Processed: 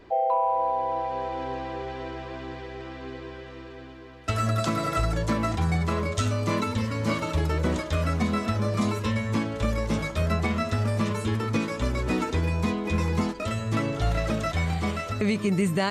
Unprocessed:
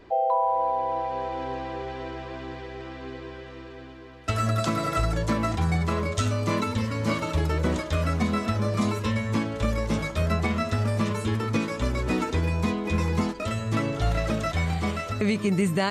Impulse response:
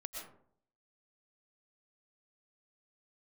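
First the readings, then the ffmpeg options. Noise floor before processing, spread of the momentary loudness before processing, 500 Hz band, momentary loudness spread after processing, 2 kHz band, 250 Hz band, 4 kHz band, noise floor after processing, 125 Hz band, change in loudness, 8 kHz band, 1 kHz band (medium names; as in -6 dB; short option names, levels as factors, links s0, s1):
-41 dBFS, 13 LU, -0.5 dB, 12 LU, -0.5 dB, -0.5 dB, -0.5 dB, -42 dBFS, -0.5 dB, -0.5 dB, -0.5 dB, -0.5 dB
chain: -af "acontrast=75,volume=0.447"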